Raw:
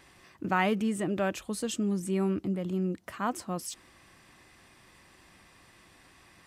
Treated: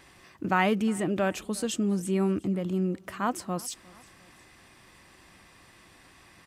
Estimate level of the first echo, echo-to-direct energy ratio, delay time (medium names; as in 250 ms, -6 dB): -24.0 dB, -23.0 dB, 356 ms